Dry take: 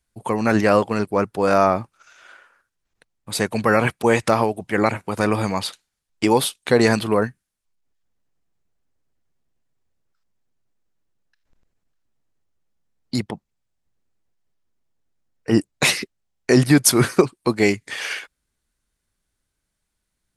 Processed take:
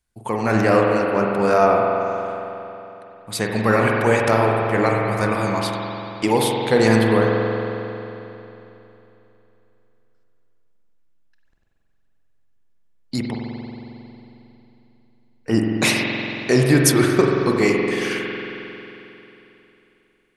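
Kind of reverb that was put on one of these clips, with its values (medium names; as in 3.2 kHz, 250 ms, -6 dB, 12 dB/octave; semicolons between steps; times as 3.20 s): spring tank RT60 3.2 s, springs 45 ms, chirp 60 ms, DRR -1 dB; trim -2 dB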